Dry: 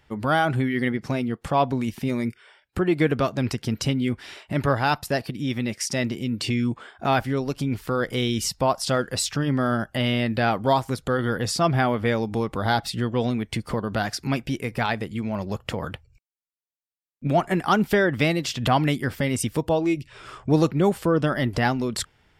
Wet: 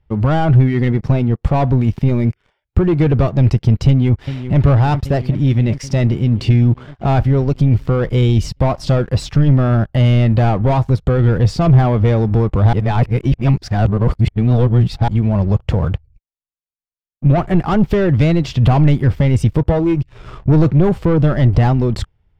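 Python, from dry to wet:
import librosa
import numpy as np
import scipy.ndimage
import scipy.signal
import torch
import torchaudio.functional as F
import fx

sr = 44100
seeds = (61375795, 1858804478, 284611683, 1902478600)

y = fx.echo_throw(x, sr, start_s=3.88, length_s=0.73, ms=390, feedback_pct=80, wet_db=-13.0)
y = fx.edit(y, sr, fx.reverse_span(start_s=12.73, length_s=2.35), tone=tone)
y = fx.graphic_eq_15(y, sr, hz=(250, 1600, 10000), db=(-6, -5, -6))
y = fx.leveller(y, sr, passes=3)
y = fx.riaa(y, sr, side='playback')
y = y * librosa.db_to_amplitude(-4.0)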